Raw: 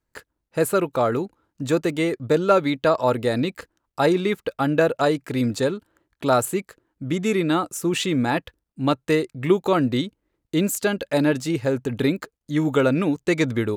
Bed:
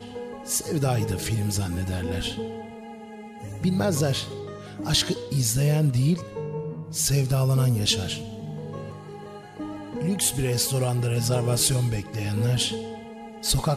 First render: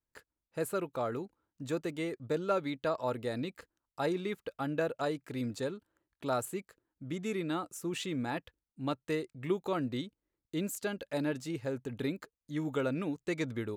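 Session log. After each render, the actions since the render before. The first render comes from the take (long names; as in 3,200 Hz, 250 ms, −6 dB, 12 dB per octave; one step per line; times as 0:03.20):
level −13.5 dB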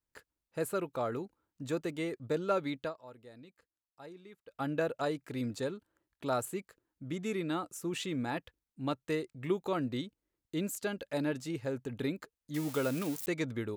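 0:02.81–0:04.60: duck −17.5 dB, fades 0.13 s
0:12.54–0:13.26: spike at every zero crossing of −30 dBFS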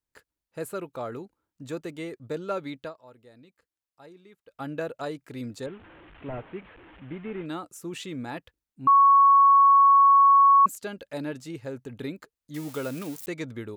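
0:05.66–0:07.46: linear delta modulator 16 kbit/s, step −44.5 dBFS
0:08.87–0:10.66: beep over 1,110 Hz −13 dBFS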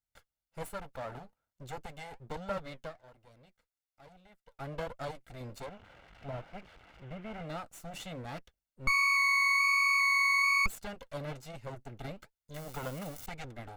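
lower of the sound and its delayed copy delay 1.4 ms
flanger 1.2 Hz, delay 0.1 ms, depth 8.5 ms, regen −65%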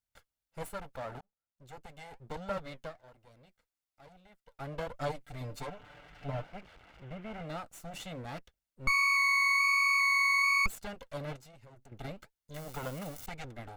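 0:01.21–0:02.43: fade in
0:04.93–0:06.47: comb filter 6.8 ms, depth 97%
0:11.36–0:11.92: downward compressor 8 to 1, threshold −52 dBFS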